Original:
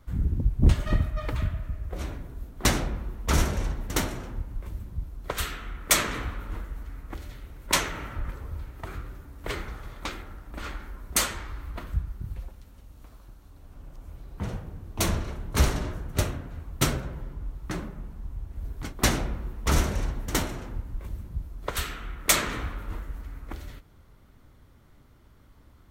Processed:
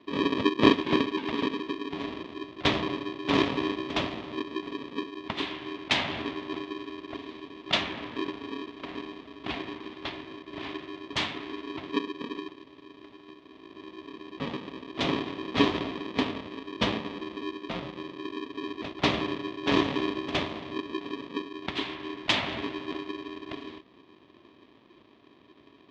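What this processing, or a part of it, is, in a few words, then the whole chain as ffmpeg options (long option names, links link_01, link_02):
ring modulator pedal into a guitar cabinet: -af "aeval=exprs='val(0)*sgn(sin(2*PI*350*n/s))':channel_layout=same,highpass=85,equalizer=frequency=460:width_type=q:width=4:gain=-8,equalizer=frequency=820:width_type=q:width=4:gain=-3,equalizer=frequency=1500:width_type=q:width=4:gain=-9,equalizer=frequency=3400:width_type=q:width=4:gain=5,lowpass=frequency=3900:width=0.5412,lowpass=frequency=3900:width=1.3066"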